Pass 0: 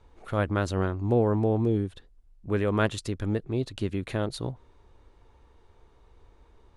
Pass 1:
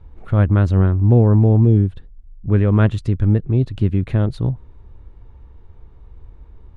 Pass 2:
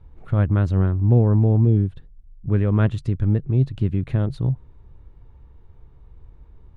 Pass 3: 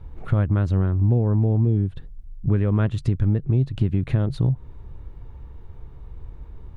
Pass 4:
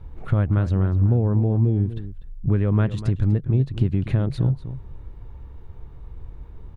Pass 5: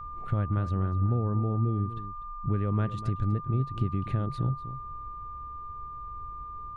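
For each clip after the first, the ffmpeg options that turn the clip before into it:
ffmpeg -i in.wav -af "bass=frequency=250:gain=14,treble=frequency=4000:gain=-12,volume=2.5dB" out.wav
ffmpeg -i in.wav -af "equalizer=frequency=140:width_type=o:width=0.31:gain=7.5,volume=-5dB" out.wav
ffmpeg -i in.wav -af "acompressor=threshold=-25dB:ratio=4,volume=7.5dB" out.wav
ffmpeg -i in.wav -filter_complex "[0:a]asplit=2[link_01][link_02];[link_02]adelay=244.9,volume=-13dB,highshelf=frequency=4000:gain=-5.51[link_03];[link_01][link_03]amix=inputs=2:normalize=0" out.wav
ffmpeg -i in.wav -af "aeval=exprs='val(0)+0.0316*sin(2*PI*1200*n/s)':channel_layout=same,volume=-8dB" out.wav

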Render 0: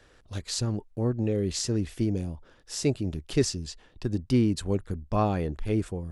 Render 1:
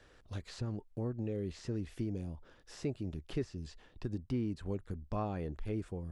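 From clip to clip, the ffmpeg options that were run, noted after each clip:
ffmpeg -i in.wav -filter_complex "[0:a]acrossover=split=2600[link_01][link_02];[link_02]acompressor=threshold=-48dB:ratio=4:attack=1:release=60[link_03];[link_01][link_03]amix=inputs=2:normalize=0,highshelf=frequency=8200:gain=-6,acompressor=threshold=-35dB:ratio=2,volume=-3.5dB" out.wav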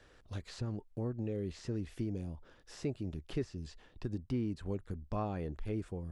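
ffmpeg -i in.wav -af anull out.wav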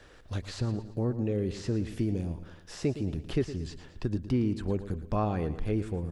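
ffmpeg -i in.wav -af "aecho=1:1:113|226|339|452|565:0.224|0.105|0.0495|0.0232|0.0109,volume=7.5dB" out.wav

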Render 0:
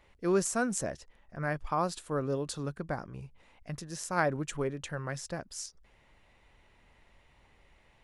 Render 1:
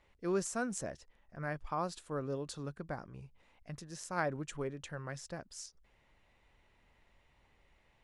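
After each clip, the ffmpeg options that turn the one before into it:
ffmpeg -i in.wav -af "lowpass=10000,volume=-6dB" out.wav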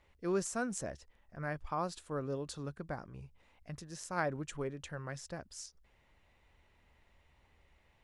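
ffmpeg -i in.wav -af "equalizer=frequency=74:width_type=o:width=0.41:gain=7" out.wav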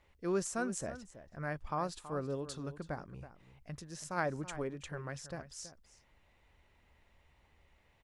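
ffmpeg -i in.wav -filter_complex "[0:a]asplit=2[link_01][link_02];[link_02]adelay=326.5,volume=-13dB,highshelf=frequency=4000:gain=-7.35[link_03];[link_01][link_03]amix=inputs=2:normalize=0" out.wav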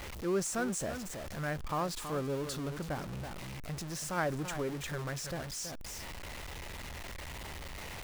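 ffmpeg -i in.wav -af "aeval=exprs='val(0)+0.5*0.0133*sgn(val(0))':channel_layout=same" out.wav

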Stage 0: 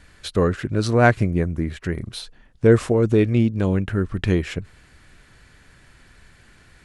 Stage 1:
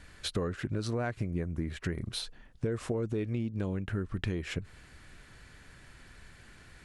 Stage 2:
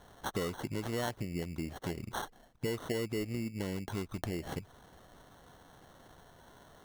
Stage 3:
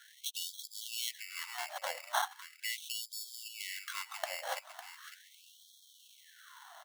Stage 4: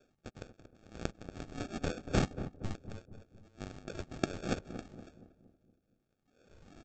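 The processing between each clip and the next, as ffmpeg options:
ffmpeg -i in.wav -af "alimiter=limit=-9dB:level=0:latency=1:release=161,acompressor=threshold=-27dB:ratio=6,volume=-2.5dB" out.wav
ffmpeg -i in.wav -af "lowshelf=frequency=99:gain=-12,acrusher=samples=18:mix=1:aa=0.000001,volume=-1dB" out.wav
ffmpeg -i in.wav -filter_complex "[0:a]volume=24.5dB,asoftclip=hard,volume=-24.5dB,asplit=2[link_01][link_02];[link_02]aecho=0:1:554|1108|1662:0.299|0.0806|0.0218[link_03];[link_01][link_03]amix=inputs=2:normalize=0,afftfilt=real='re*gte(b*sr/1024,510*pow(3200/510,0.5+0.5*sin(2*PI*0.39*pts/sr)))':imag='im*gte(b*sr/1024,510*pow(3200/510,0.5+0.5*sin(2*PI*0.39*pts/sr)))':win_size=1024:overlap=0.75,volume=7dB" out.wav
ffmpeg -i in.wav -filter_complex "[0:a]adynamicsmooth=sensitivity=5.5:basefreq=900,aresample=16000,acrusher=samples=16:mix=1:aa=0.000001,aresample=44100,asplit=2[link_01][link_02];[link_02]adelay=234,lowpass=frequency=820:poles=1,volume=-10dB,asplit=2[link_03][link_04];[link_04]adelay=234,lowpass=frequency=820:poles=1,volume=0.52,asplit=2[link_05][link_06];[link_06]adelay=234,lowpass=frequency=820:poles=1,volume=0.52,asplit=2[link_07][link_08];[link_08]adelay=234,lowpass=frequency=820:poles=1,volume=0.52,asplit=2[link_09][link_10];[link_10]adelay=234,lowpass=frequency=820:poles=1,volume=0.52,asplit=2[link_11][link_12];[link_12]adelay=234,lowpass=frequency=820:poles=1,volume=0.52[link_13];[link_01][link_03][link_05][link_07][link_09][link_11][link_13]amix=inputs=7:normalize=0,volume=4.5dB" out.wav

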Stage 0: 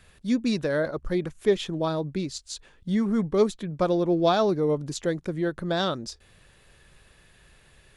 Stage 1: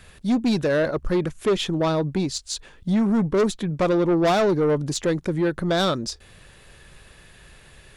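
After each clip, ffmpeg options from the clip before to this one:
ffmpeg -i in.wav -af "asoftclip=type=tanh:threshold=-23dB,volume=7.5dB" out.wav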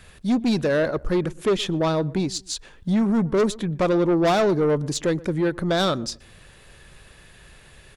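ffmpeg -i in.wav -filter_complex "[0:a]asplit=2[link_01][link_02];[link_02]adelay=121,lowpass=frequency=1200:poles=1,volume=-20.5dB,asplit=2[link_03][link_04];[link_04]adelay=121,lowpass=frequency=1200:poles=1,volume=0.3[link_05];[link_01][link_03][link_05]amix=inputs=3:normalize=0" out.wav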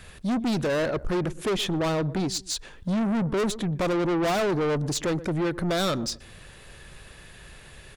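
ffmpeg -i in.wav -af "asoftclip=type=tanh:threshold=-24.5dB,volume=2dB" out.wav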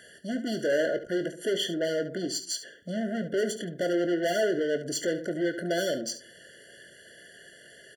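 ffmpeg -i in.wav -filter_complex "[0:a]highpass=330,asplit=2[link_01][link_02];[link_02]aecho=0:1:23|71:0.299|0.251[link_03];[link_01][link_03]amix=inputs=2:normalize=0,afftfilt=real='re*eq(mod(floor(b*sr/1024/690),2),0)':imag='im*eq(mod(floor(b*sr/1024/690),2),0)':win_size=1024:overlap=0.75" out.wav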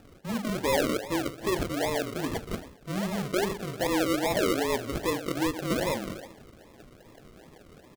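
ffmpeg -i in.wav -filter_complex "[0:a]asplit=2[link_01][link_02];[link_02]adelay=310,highpass=300,lowpass=3400,asoftclip=type=hard:threshold=-25dB,volume=-14dB[link_03];[link_01][link_03]amix=inputs=2:normalize=0,afreqshift=-26,acrusher=samples=41:mix=1:aa=0.000001:lfo=1:lforange=24.6:lforate=2.5" out.wav

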